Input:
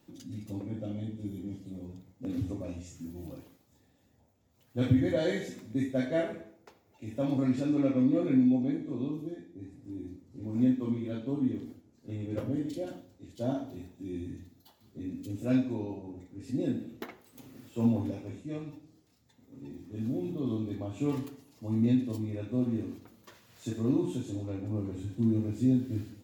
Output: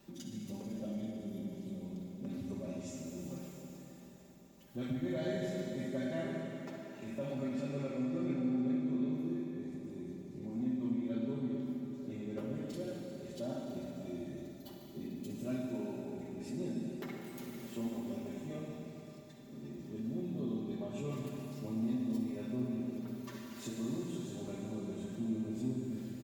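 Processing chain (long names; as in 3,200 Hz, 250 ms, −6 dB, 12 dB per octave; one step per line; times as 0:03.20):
comb filter 5.1 ms, depth 77%
downward compressor 2 to 1, threshold −47 dBFS, peak gain reduction 15.5 dB
soft clipping −29 dBFS, distortion −26 dB
convolution reverb RT60 4.2 s, pre-delay 49 ms, DRR 0 dB
level +1 dB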